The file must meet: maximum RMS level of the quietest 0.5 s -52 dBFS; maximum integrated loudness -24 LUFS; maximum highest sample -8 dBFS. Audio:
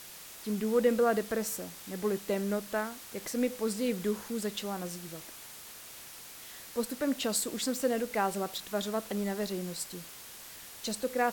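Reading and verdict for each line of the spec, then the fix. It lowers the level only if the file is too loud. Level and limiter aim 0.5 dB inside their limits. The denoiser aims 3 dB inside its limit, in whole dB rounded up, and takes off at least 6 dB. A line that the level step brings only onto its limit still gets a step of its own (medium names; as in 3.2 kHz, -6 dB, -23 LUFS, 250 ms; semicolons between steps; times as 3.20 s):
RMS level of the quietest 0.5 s -48 dBFS: fail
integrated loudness -33.0 LUFS: pass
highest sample -14.0 dBFS: pass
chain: noise reduction 7 dB, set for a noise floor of -48 dBFS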